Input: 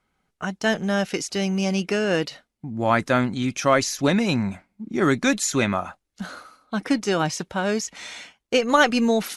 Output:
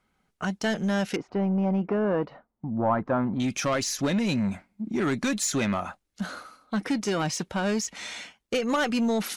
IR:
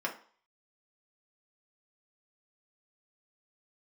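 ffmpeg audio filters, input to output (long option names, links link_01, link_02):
-filter_complex "[0:a]equalizer=frequency=210:width_type=o:width=0.35:gain=3.5,acompressor=threshold=-20dB:ratio=2.5,asoftclip=type=tanh:threshold=-19.5dB,asettb=1/sr,asplit=3[link_01][link_02][link_03];[link_01]atrim=end=1.164[link_04];[link_02]atrim=start=1.16:end=3.4,asetpts=PTS-STARTPTS,afade=type=in:duration=0.004:curve=qsin,afade=type=out:start_time=2.236:duration=0.004:curve=qsin,lowpass=frequency=1000:width_type=q:width=1.8[link_05];[link_03]atrim=start=3.396[link_06];[link_04][link_05]acrossfade=duration=0.004:curve1=hsin:curve2=qsin[link_07];[link_07][link_06]acrossfade=duration=0.004:curve1=qsin:curve2=hsin"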